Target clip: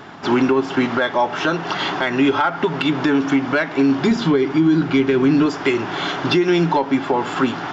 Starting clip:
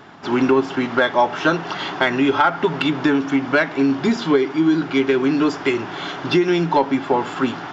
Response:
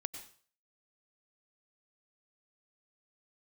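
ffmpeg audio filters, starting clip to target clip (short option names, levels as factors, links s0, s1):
-filter_complex "[0:a]asettb=1/sr,asplit=3[s0][s1][s2];[s0]atrim=end=4.114[s3];[s1]atrim=start=4.11:end=5.46,asetpts=PTS-STARTPTS,afade=t=in:d=0.004:c=qsin,afade=t=out:st=1.346:d=0.004:c=qsin,bass=f=250:g=8,treble=f=4000:g=-1[s4];[s2]atrim=start=5.456[s5];[s3][s4]acrossfade=d=0.004:c1=hsin:c2=qsin[s6];[s6][s5]acrossfade=d=0.004:c1=qsin:c2=hsin,alimiter=limit=0.224:level=0:latency=1:release=263,volume=1.78"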